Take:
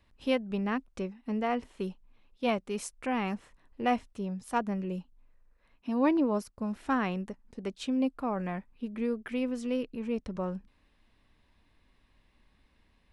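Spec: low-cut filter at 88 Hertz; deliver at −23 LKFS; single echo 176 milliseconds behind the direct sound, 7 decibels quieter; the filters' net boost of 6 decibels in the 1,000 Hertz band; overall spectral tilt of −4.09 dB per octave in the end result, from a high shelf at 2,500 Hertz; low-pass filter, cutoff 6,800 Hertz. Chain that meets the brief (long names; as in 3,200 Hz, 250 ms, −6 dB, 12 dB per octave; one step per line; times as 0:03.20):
high-pass filter 88 Hz
low-pass filter 6,800 Hz
parametric band 1,000 Hz +7 dB
high-shelf EQ 2,500 Hz +6.5 dB
single-tap delay 176 ms −7 dB
level +7 dB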